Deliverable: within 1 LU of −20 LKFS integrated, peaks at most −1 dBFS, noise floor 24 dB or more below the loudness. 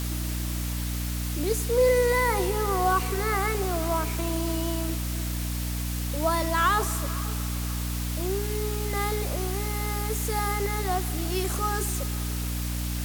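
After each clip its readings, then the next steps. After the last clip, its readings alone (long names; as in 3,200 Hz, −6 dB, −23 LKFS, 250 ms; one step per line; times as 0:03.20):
mains hum 60 Hz; hum harmonics up to 300 Hz; level of the hum −28 dBFS; background noise floor −30 dBFS; target noise floor −51 dBFS; integrated loudness −27.0 LKFS; sample peak −11.5 dBFS; target loudness −20.0 LKFS
→ mains-hum notches 60/120/180/240/300 Hz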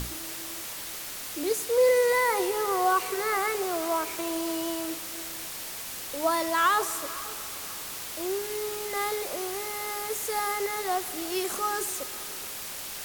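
mains hum none found; background noise floor −38 dBFS; target noise floor −53 dBFS
→ noise reduction from a noise print 15 dB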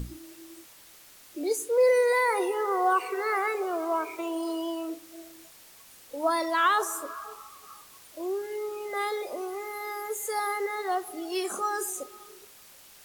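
background noise floor −53 dBFS; integrated loudness −28.5 LKFS; sample peak −14.0 dBFS; target loudness −20.0 LKFS
→ level +8.5 dB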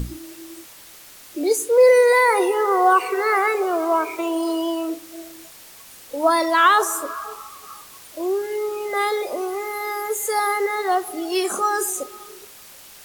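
integrated loudness −20.0 LKFS; sample peak −5.5 dBFS; background noise floor −44 dBFS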